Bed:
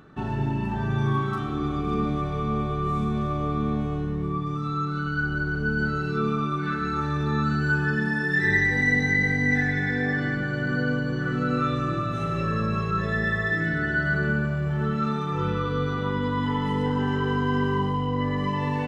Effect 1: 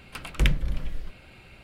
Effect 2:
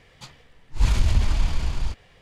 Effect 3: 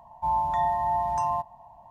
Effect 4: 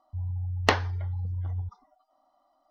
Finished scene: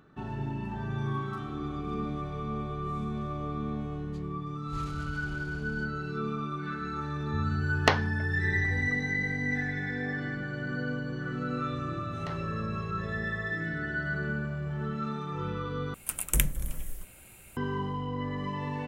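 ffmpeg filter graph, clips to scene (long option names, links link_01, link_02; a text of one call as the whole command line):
ffmpeg -i bed.wav -i cue0.wav -i cue1.wav -i cue2.wav -i cue3.wav -filter_complex "[4:a]asplit=2[link_01][link_02];[0:a]volume=-8dB[link_03];[2:a]highpass=48[link_04];[link_02]alimiter=limit=-13dB:level=0:latency=1:release=54[link_05];[1:a]aexciter=amount=11.7:drive=7.3:freq=6900[link_06];[link_03]asplit=2[link_07][link_08];[link_07]atrim=end=15.944[link_09];[link_06]atrim=end=1.63,asetpts=PTS-STARTPTS,volume=-5.5dB[link_10];[link_08]atrim=start=17.566[link_11];[link_04]atrim=end=2.21,asetpts=PTS-STARTPTS,volume=-17.5dB,afade=type=in:duration=0.004:curve=hsin,afade=type=out:start_time=2.206:duration=0.004:curve=hsin,adelay=3920[link_12];[link_01]atrim=end=2.7,asetpts=PTS-STARTPTS,volume=-1dB,afade=type=in:duration=0.004:curve=hsin,afade=type=out:start_time=2.696:duration=0.004:curve=hsin,adelay=7190[link_13];[link_05]atrim=end=2.7,asetpts=PTS-STARTPTS,volume=-16.5dB,afade=type=in:duration=0.004:curve=hsin,afade=type=out:start_time=2.696:duration=0.004:curve=hsin,adelay=11580[link_14];[link_09][link_10]acrossfade=duration=0.004:curve1=hsin:curve2=hsin[link_15];[link_15][link_11]acrossfade=duration=0.004:curve1=hsin:curve2=hsin[link_16];[link_16][link_12][link_13][link_14]amix=inputs=4:normalize=0" out.wav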